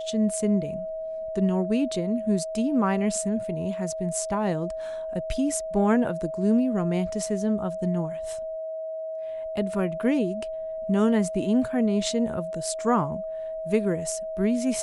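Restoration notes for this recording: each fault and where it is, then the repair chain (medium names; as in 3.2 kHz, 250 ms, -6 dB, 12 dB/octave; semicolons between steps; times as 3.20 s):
whine 640 Hz -30 dBFS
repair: band-stop 640 Hz, Q 30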